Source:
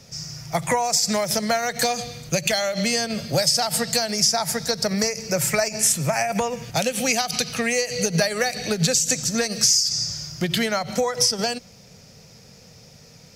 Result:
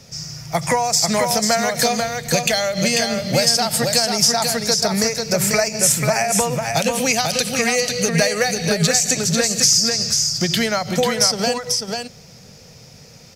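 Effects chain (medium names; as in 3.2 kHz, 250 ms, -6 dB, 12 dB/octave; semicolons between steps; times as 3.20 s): delay 492 ms -4.5 dB; trim +3 dB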